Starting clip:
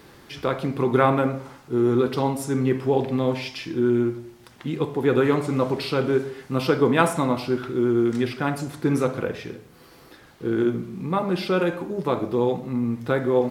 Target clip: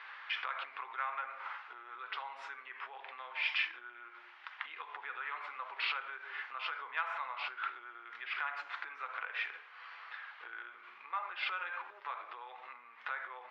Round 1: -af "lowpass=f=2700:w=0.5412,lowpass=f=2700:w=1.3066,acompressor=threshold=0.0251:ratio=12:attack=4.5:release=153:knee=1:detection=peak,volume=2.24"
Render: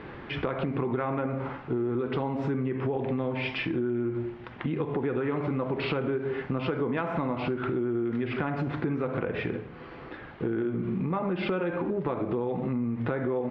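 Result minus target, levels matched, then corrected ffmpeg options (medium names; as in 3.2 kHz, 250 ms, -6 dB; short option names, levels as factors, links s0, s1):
1 kHz band -5.5 dB
-af "lowpass=f=2700:w=0.5412,lowpass=f=2700:w=1.3066,acompressor=threshold=0.0251:ratio=12:attack=4.5:release=153:knee=1:detection=peak,highpass=f=1100:w=0.5412,highpass=f=1100:w=1.3066,volume=2.24"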